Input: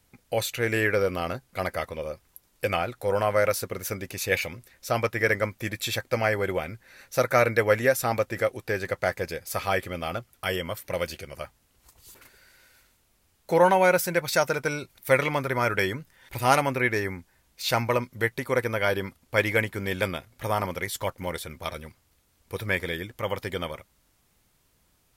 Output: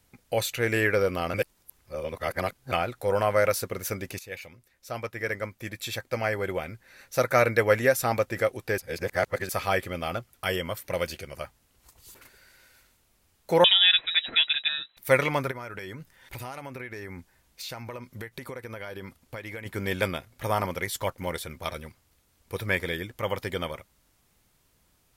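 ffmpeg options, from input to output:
-filter_complex "[0:a]asettb=1/sr,asplit=3[a][b][c];[a]atrim=end=13.644[d];[b]atrim=start=13.64:end=14.97,asetpts=PTS-STARTPTS,afade=t=in:d=0.004:c=qsin,afade=t=out:st=1.326:d=0.004:c=qsin,lowpass=f=3.4k:t=q:w=0.5098,lowpass=f=3.4k:t=q:w=0.6013,lowpass=f=3.4k:t=q:w=0.9,lowpass=f=3.4k:t=q:w=2.563,afreqshift=-4000[e];[c]atrim=start=14.966[f];[d][e]acrossfade=d=0.004:c1=hsin:c2=qsin[g];[g][f]acrossfade=d=0.004:c1=qsin:c2=hsin,asplit=3[h][i][j];[h]afade=t=out:st=15.5:d=0.02[k];[i]acompressor=threshold=-34dB:ratio=10:attack=3.2:release=140:knee=1:detection=peak,afade=t=in:st=15.5:d=0.02,afade=t=out:st=19.65:d=0.02[l];[j]afade=t=in:st=19.65:d=0.02[m];[k][l][m]amix=inputs=3:normalize=0,asplit=6[n][o][p][q][r][s];[n]atrim=end=1.342[t];[o]atrim=start=1.338:end=2.722,asetpts=PTS-STARTPTS,areverse[u];[p]atrim=start=2.718:end=4.19,asetpts=PTS-STARTPTS,afade=t=out:st=1.468:d=0.004:c=hsin:silence=0.16788[v];[q]atrim=start=4.19:end=8.782,asetpts=PTS-STARTPTS,afade=t=in:d=3.41:silence=0.16788[w];[r]atrim=start=8.778:end=9.492,asetpts=PTS-STARTPTS,areverse[x];[s]atrim=start=9.488[y];[t][u]acrossfade=d=0.004:c1=hsin:c2=hsin[z];[v][w]concat=n=2:v=0:a=1[aa];[z][aa]acrossfade=d=0.004:c1=hsin:c2=hsin[ab];[ab][x]acrossfade=d=0.004:c1=hsin:c2=hsin[ac];[ac][y]acrossfade=d=0.004:c1=hsin:c2=hsin"

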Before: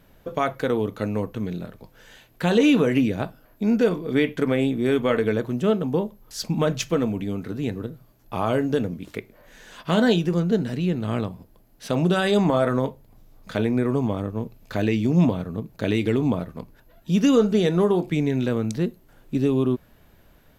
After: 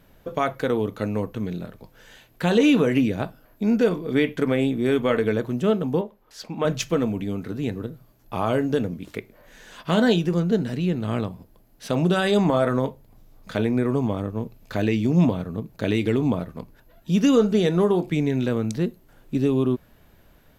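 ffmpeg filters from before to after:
-filter_complex "[0:a]asettb=1/sr,asplit=3[a][b][c];[a]atrim=end=6.014[d];[b]atrim=start=6.01:end=6.65,asetpts=PTS-STARTPTS,afade=t=in:d=0.004:c=qsin,afade=t=out:st=0.636:d=0.004:c=qsin,bass=f=250:g=-13,treble=f=4k:g=-12[e];[c]atrim=start=6.646[f];[d][e]acrossfade=d=0.004:c1=hsin:c2=qsin[g];[g][f]acrossfade=d=0.004:c1=qsin:c2=hsin"

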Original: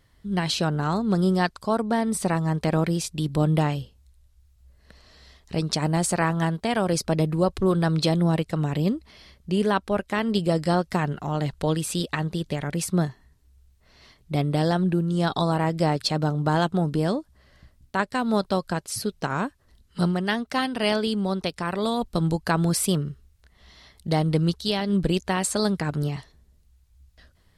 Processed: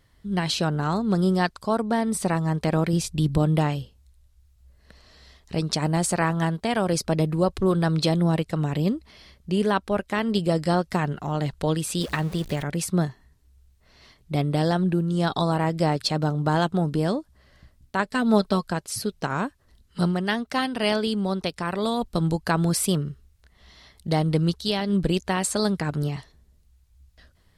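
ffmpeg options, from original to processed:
-filter_complex "[0:a]asettb=1/sr,asplit=3[a][b][c];[a]atrim=end=2.934[d];[b]atrim=start=2.93:end=3.38,asetpts=PTS-STARTPTS,afade=t=in:d=0.004:c=qsin,afade=t=out:st=0.446:d=0.004:c=qsin,lowshelf=f=150:g=10[e];[c]atrim=start=3.376[f];[d][e]acrossfade=d=0.004:c1=hsin:c2=qsin[g];[g][f]acrossfade=d=0.004:c1=qsin:c2=hsin,asettb=1/sr,asplit=3[h][i][j];[h]atrim=end=12.014[k];[i]atrim=start=12.01:end=12.63,asetpts=PTS-STARTPTS,afade=t=in:d=0.004:c=qsin,afade=t=out:st=0.616:d=0.004:c=qsin,aeval=exprs='val(0)+0.5*0.0178*sgn(val(0))':c=same[l];[j]atrim=start=12.626[m];[k][l]acrossfade=d=0.004:c1=hsin:c2=qsin[n];[n][m]acrossfade=d=0.004:c1=qsin:c2=hsin,asettb=1/sr,asplit=3[o][p][q];[o]atrim=end=18.044[r];[p]atrim=start=18.04:end=18.65,asetpts=PTS-STARTPTS,afade=t=in:d=0.004:c=qsin,afade=t=out:st=0.606:d=0.004:c=qsin,aecho=1:1:4.6:0.65,atrim=end_sample=26901[s];[q]atrim=start=18.646[t];[r][s]acrossfade=d=0.004:c1=hsin:c2=qsin[u];[u][t]acrossfade=d=0.004:c1=qsin:c2=hsin"

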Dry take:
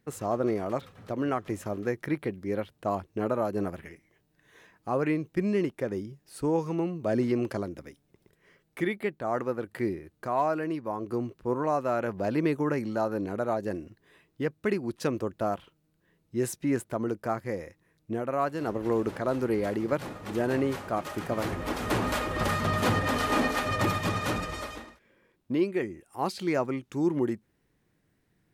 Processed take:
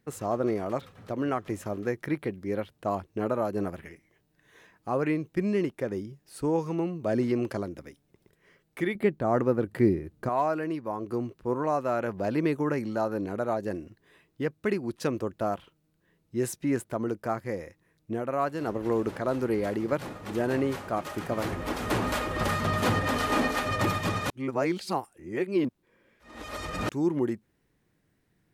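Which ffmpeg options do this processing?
-filter_complex "[0:a]asettb=1/sr,asplit=3[a][b][c];[a]atrim=end=8.954[d];[b]atrim=start=8.95:end=10.29,asetpts=PTS-STARTPTS,afade=t=in:d=0.004:c=qsin,afade=t=out:st=1.336:d=0.004:c=qsin,lowshelf=f=480:g=10.5[e];[c]atrim=start=10.286[f];[d][e]acrossfade=d=0.004:c1=hsin:c2=qsin[g];[g][f]acrossfade=d=0.004:c1=qsin:c2=hsin,asplit=3[h][i][j];[h]atrim=end=24.302[k];[i]atrim=start=24.298:end=26.892,asetpts=PTS-STARTPTS,areverse[l];[j]atrim=start=26.888[m];[k][l]acrossfade=d=0.004:c1=hsin:c2=hsin[n];[n][m]acrossfade=d=0.004:c1=hsin:c2=hsin"

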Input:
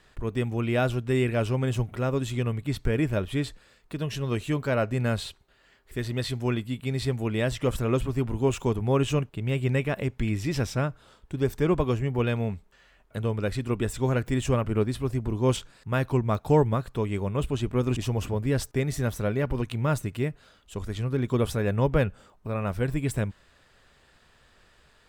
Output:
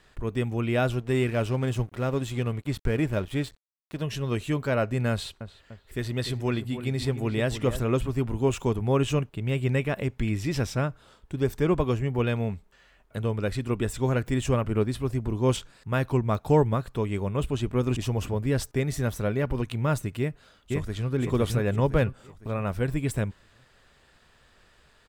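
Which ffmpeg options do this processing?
-filter_complex "[0:a]asettb=1/sr,asplit=3[a][b][c];[a]atrim=end=0.994[d];[b]atrim=start=0.99:end=4.02,asetpts=PTS-STARTPTS,afade=t=in:d=0.004:c=qsin,afade=t=out:st=3.026:d=0.004:c=qsin,aeval=exprs='sgn(val(0))*max(abs(val(0))-0.00531,0)':c=same[e];[c]atrim=start=4.016[f];[d][e]acrossfade=d=0.004:c1=hsin:c2=qsin[g];[g][f]acrossfade=d=0.004:c1=qsin:c2=hsin,asettb=1/sr,asplit=3[h][i][j];[h]atrim=end=5.114[k];[i]atrim=start=5.11:end=7.83,asetpts=PTS-STARTPTS,afade=t=in:d=0.004:c=qsin,afade=t=out:st=2.716:d=0.004:c=qsin,asplit=2[l][m];[m]adelay=296,lowpass=f=1.5k:p=1,volume=-10dB,asplit=2[n][o];[o]adelay=296,lowpass=f=1.5k:p=1,volume=0.5,asplit=2[p][q];[q]adelay=296,lowpass=f=1.5k:p=1,volume=0.5,asplit=2[r][s];[s]adelay=296,lowpass=f=1.5k:p=1,volume=0.5,asplit=2[t][u];[u]adelay=296,lowpass=f=1.5k:p=1,volume=0.5[v];[l][n][p][r][t][v]amix=inputs=6:normalize=0,atrim=end_sample=119952[w];[j]atrim=start=7.826[x];[k][w]acrossfade=d=0.004:c1=hsin:c2=qsin[y];[y][x]acrossfade=d=0.004:c1=qsin:c2=hsin,asplit=2[z][aa];[aa]afade=t=in:st=20.19:d=0.01,afade=t=out:st=21.1:d=0.01,aecho=0:1:510|1020|1530|2040|2550:0.841395|0.336558|0.134623|0.0538493|0.0215397[ab];[z][ab]amix=inputs=2:normalize=0"

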